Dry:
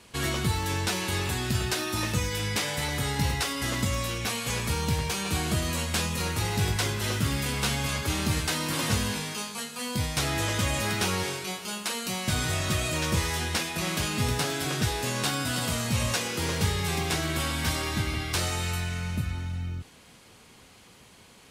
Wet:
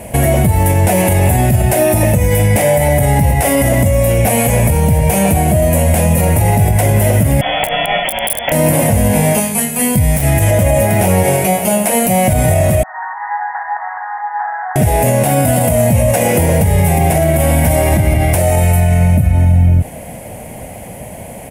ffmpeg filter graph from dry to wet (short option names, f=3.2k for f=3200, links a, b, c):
-filter_complex "[0:a]asettb=1/sr,asplit=3[a][b][c];[a]atrim=end=7.414[d];[b]atrim=start=7.41:end=8.52,asetpts=PTS-STARTPTS,afade=t=in:d=0.004:c=qsin,afade=t=out:st=1.106:d=0.004:c=qsin,aemphasis=mode=reproduction:type=50fm,lowpass=f=3k:t=q:w=0.5098,lowpass=f=3k:t=q:w=0.6013,lowpass=f=3k:t=q:w=0.9,lowpass=f=3k:t=q:w=2.563,afreqshift=-3500,aeval=exprs='(mod(9.44*val(0)+1,2)-1)/9.44':c=same[e];[c]atrim=start=8.516[f];[d][e]acrossfade=d=0.004:c1=hsin:c2=qsin[g];[g][f]acrossfade=d=0.004:c1=qsin:c2=hsin,asettb=1/sr,asplit=3[h][i][j];[h]atrim=end=9.404[k];[i]atrim=start=9.4:end=10.51,asetpts=PTS-STARTPTS,afade=t=in:d=0.004:c=qsin,afade=t=out:st=1.106:d=0.004:c=qsin,equalizer=f=590:w=0.94:g=-10,aeval=exprs='(mod(7.5*val(0)+1,2)-1)/7.5':c=same,aeval=exprs='val(0)+0.00178*sin(2*PI*420*n/s)':c=same[l];[j]atrim=start=10.506[m];[k][l]acrossfade=d=0.004:c1=hsin:c2=qsin[n];[n][m]acrossfade=d=0.004:c1=qsin:c2=hsin,asettb=1/sr,asplit=3[o][p][q];[o]atrim=end=12.834[r];[p]atrim=start=12.83:end=14.76,asetpts=PTS-STARTPTS,afade=t=in:d=0.004:c=qsin,afade=t=out:st=1.926:d=0.004:c=qsin,acompressor=threshold=-28dB:ratio=4:attack=3.2:release=140:knee=1:detection=peak,asuperpass=centerf=1200:order=20:qfactor=1.1[s];[q]atrim=start=14.756[t];[r][s]acrossfade=d=0.004:c1=hsin:c2=qsin[u];[u][t]acrossfade=d=0.004:c1=qsin:c2=hsin,firequalizer=gain_entry='entry(160,0);entry(400,-8);entry(610,9);entry(1200,-20);entry(2000,-7);entry(4000,-26);entry(10000,0)':delay=0.05:min_phase=1,acompressor=threshold=-32dB:ratio=6,alimiter=level_in=29dB:limit=-1dB:release=50:level=0:latency=1,volume=-2dB"